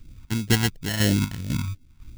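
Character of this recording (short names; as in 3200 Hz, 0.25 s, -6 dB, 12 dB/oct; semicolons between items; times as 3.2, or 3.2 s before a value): aliases and images of a low sample rate 1200 Hz, jitter 0%; phasing stages 2, 2.9 Hz, lowest notch 480–1000 Hz; chopped level 2 Hz, depth 60%, duty 50%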